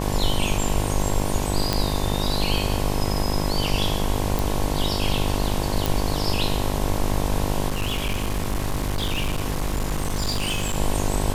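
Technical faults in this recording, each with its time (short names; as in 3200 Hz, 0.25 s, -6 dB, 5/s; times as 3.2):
buzz 50 Hz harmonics 22 -26 dBFS
1.73 pop -5 dBFS
4.39 pop
5.86 pop
7.68–10.76 clipped -20 dBFS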